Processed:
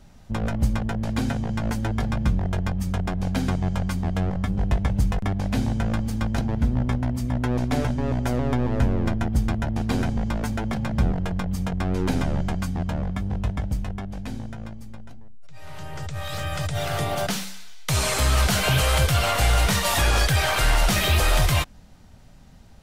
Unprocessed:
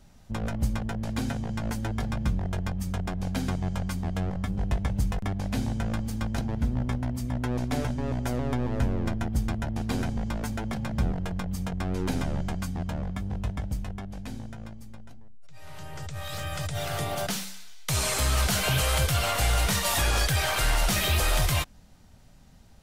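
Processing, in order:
high-shelf EQ 5,200 Hz −5 dB
level +5 dB

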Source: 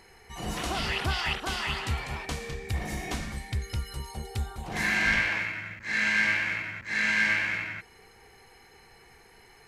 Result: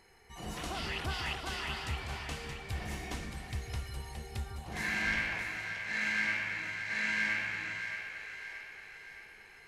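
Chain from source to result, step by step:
echo with a time of its own for lows and highs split 390 Hz, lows 148 ms, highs 623 ms, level −7.5 dB
level −7.5 dB

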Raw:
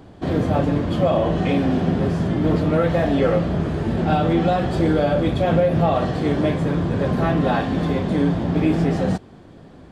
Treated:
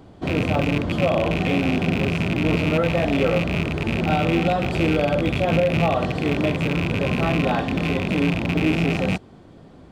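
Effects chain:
loose part that buzzes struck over −21 dBFS, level −13 dBFS
notch filter 1,700 Hz, Q 12
level −2 dB

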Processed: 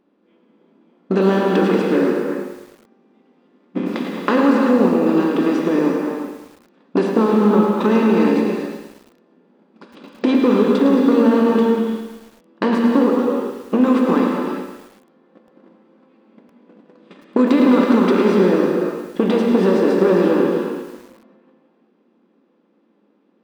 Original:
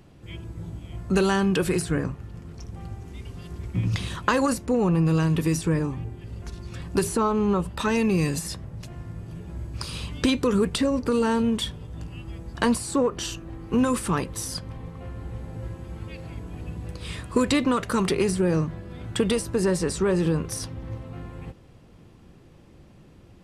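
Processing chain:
compressor on every frequency bin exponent 0.6
low-pass filter 4,400 Hz 12 dB per octave
noise gate −21 dBFS, range −39 dB
spectral tilt −3 dB per octave
downward compressor 6 to 1, threshold −20 dBFS, peak gain reduction 11.5 dB
soft clipping −14 dBFS, distortion −20 dB
linear-phase brick-wall high-pass 190 Hz
feedback echo with a high-pass in the loop 185 ms, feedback 25%, high-pass 910 Hz, level −13 dB
reverb whose tail is shaped and stops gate 420 ms flat, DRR 0.5 dB
boost into a limiter +15 dB
feedback echo at a low word length 109 ms, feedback 55%, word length 6 bits, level −9 dB
level −5 dB

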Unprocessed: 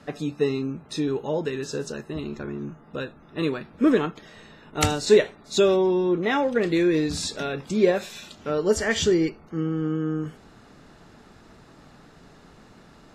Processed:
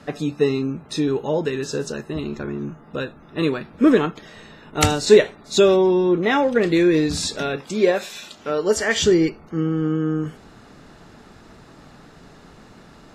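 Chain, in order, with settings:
0:07.56–0:09.04: low-shelf EQ 200 Hz −12 dB
level +4.5 dB

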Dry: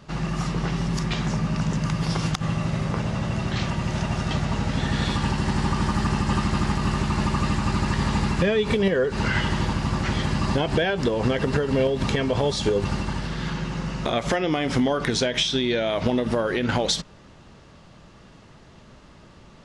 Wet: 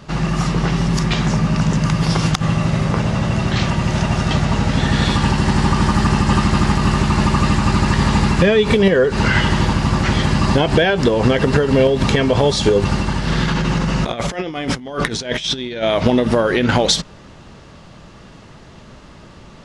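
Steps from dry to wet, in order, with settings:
0:13.27–0:15.83: compressor whose output falls as the input rises −28 dBFS, ratio −0.5
level +8 dB

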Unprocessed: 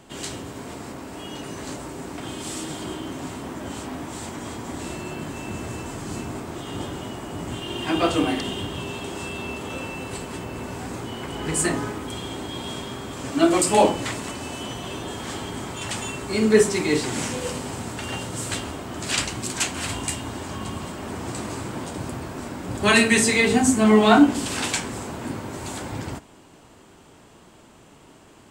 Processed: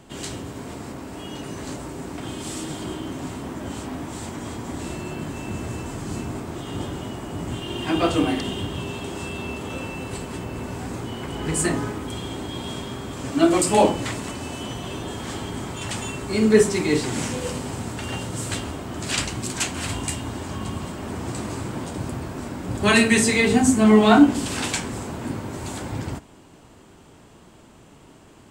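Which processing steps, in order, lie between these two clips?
low-shelf EQ 270 Hz +5 dB
level −1 dB

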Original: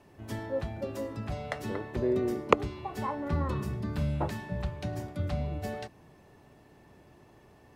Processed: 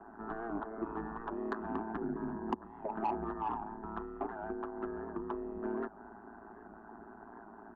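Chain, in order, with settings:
comb filter 6.5 ms, depth 78%
downward compressor 12 to 1, threshold −37 dBFS, peak gain reduction 24 dB
amplitude modulation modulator 110 Hz, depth 90%
phaser with its sweep stopped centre 500 Hz, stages 8
single-sideband voice off tune −220 Hz 270–2,000 Hz
mid-hump overdrive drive 18 dB, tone 1,400 Hz, clips at −29.5 dBFS
wow of a warped record 78 rpm, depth 100 cents
level +8.5 dB

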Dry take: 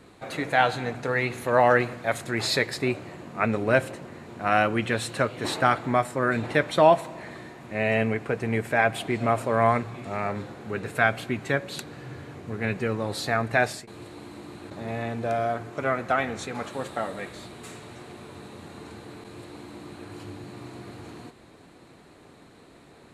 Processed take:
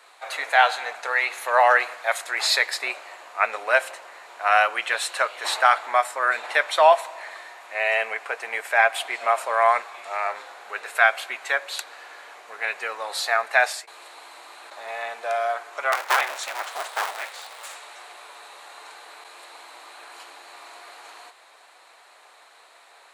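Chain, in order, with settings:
0:15.92–0:17.75: sub-harmonics by changed cycles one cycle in 2, inverted
high-pass filter 700 Hz 24 dB per octave
level +5.5 dB

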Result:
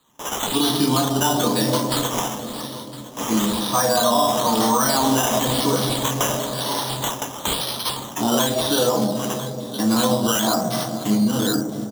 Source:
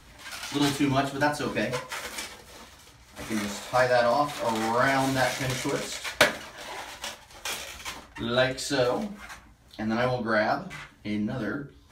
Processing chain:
in parallel at +2 dB: downward compressor, threshold −34 dBFS, peak gain reduction 18.5 dB
on the sum: noise gate with hold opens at −32 dBFS
high-pass filter 130 Hz
low-shelf EQ 190 Hz −5.5 dB
single-tap delay 1,011 ms −18 dB
convolution reverb RT60 3.4 s, pre-delay 3 ms, DRR 10 dB
sample-and-hold swept by an LFO 8×, swing 60% 1 Hz
flat-topped bell 1,900 Hz −14 dB 1.2 octaves
boost into a limiter +9 dB
level −7.5 dB

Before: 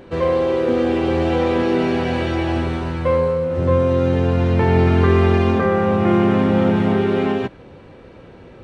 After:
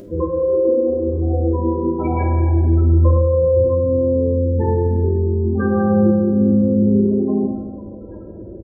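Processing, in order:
gate on every frequency bin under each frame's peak −10 dB strong
high-shelf EQ 3,200 Hz +10.5 dB
comb filter 3.1 ms, depth 38%
downward compressor, threshold −22 dBFS, peak gain reduction 11 dB
0:00.60–0:03.20: reverse bouncing-ball delay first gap 50 ms, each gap 1.2×, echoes 5
convolution reverb RT60 1.7 s, pre-delay 5 ms, DRR −1.5 dB
level +3.5 dB

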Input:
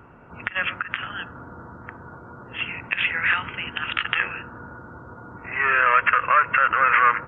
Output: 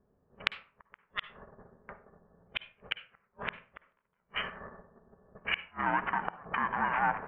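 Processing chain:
noise gate −38 dBFS, range −15 dB
ring modulation 310 Hz
treble cut that deepens with the level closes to 580 Hz, closed at −19.5 dBFS
tilt shelving filter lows −6.5 dB, about 1,400 Hz
gate with flip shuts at −20 dBFS, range −37 dB
low-pass that shuts in the quiet parts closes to 390 Hz, open at −32.5 dBFS
on a send: convolution reverb RT60 0.45 s, pre-delay 47 ms, DRR 13.5 dB
on the sum: level +4.5 dB

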